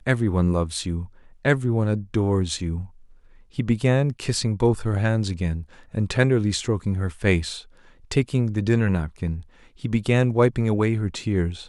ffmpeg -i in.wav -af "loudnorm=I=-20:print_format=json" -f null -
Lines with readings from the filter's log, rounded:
"input_i" : "-23.3",
"input_tp" : "-2.8",
"input_lra" : "1.4",
"input_thresh" : "-33.8",